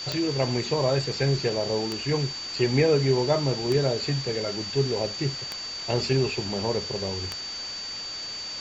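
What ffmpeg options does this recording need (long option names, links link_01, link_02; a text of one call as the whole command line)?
ffmpeg -i in.wav -af "adeclick=threshold=4,bandreject=frequency=4600:width=30,afwtdn=0.014" out.wav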